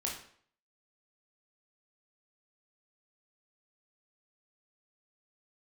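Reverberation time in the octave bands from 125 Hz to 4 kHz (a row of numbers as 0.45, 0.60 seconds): 0.55, 0.55, 0.60, 0.55, 0.55, 0.50 seconds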